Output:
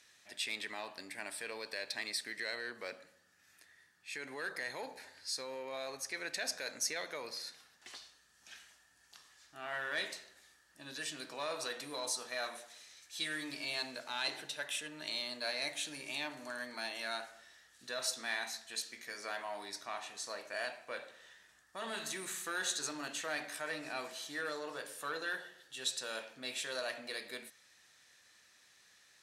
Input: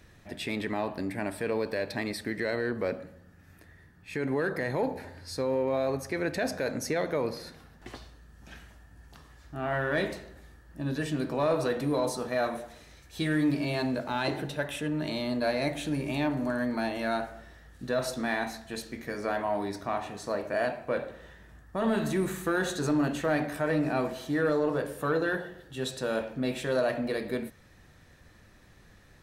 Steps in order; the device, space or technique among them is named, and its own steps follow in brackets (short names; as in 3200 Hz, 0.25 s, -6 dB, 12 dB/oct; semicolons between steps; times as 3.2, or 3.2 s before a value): piezo pickup straight into a mixer (LPF 7100 Hz 12 dB/oct; differentiator); gain +7 dB